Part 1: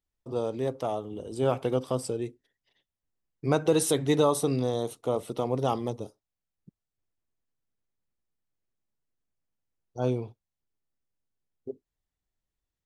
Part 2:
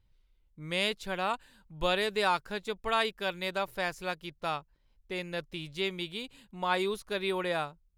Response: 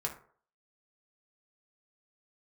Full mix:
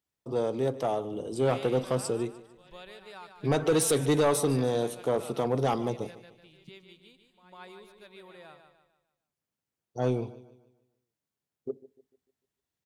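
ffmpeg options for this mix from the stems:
-filter_complex "[0:a]highpass=110,volume=1.5dB,asplit=4[a][b][c][d];[b]volume=-16.5dB[e];[c]volume=-17.5dB[f];[1:a]adelay=750,volume=-16dB,asplit=2[g][h];[h]volume=-3dB[i];[d]apad=whole_len=384773[j];[g][j]sidechaingate=range=-16dB:threshold=-47dB:ratio=16:detection=peak[k];[2:a]atrim=start_sample=2205[l];[e][l]afir=irnorm=-1:irlink=0[m];[f][i]amix=inputs=2:normalize=0,aecho=0:1:149|298|447|596|745|894:1|0.4|0.16|0.064|0.0256|0.0102[n];[a][k][m][n]amix=inputs=4:normalize=0,asoftclip=type=tanh:threshold=-17.5dB"

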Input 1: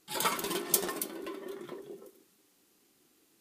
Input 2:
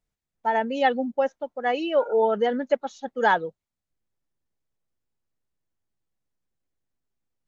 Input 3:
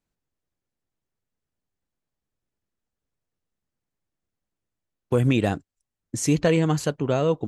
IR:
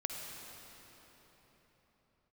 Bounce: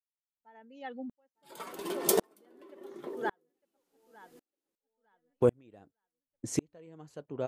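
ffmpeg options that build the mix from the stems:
-filter_complex "[0:a]adelay=1350,volume=2.5dB[a];[1:a]equalizer=f=610:t=o:w=1.1:g=-10,volume=-14dB,asplit=2[b][c];[c]volume=-15.5dB[d];[2:a]adelay=300,volume=-8.5dB[e];[d]aecho=0:1:904|1808|2712|3616:1|0.31|0.0961|0.0298[f];[a][b][e][f]amix=inputs=4:normalize=0,equalizer=f=510:w=0.49:g=9,aeval=exprs='val(0)*pow(10,-40*if(lt(mod(-0.91*n/s,1),2*abs(-0.91)/1000),1-mod(-0.91*n/s,1)/(2*abs(-0.91)/1000),(mod(-0.91*n/s,1)-2*abs(-0.91)/1000)/(1-2*abs(-0.91)/1000))/20)':c=same"

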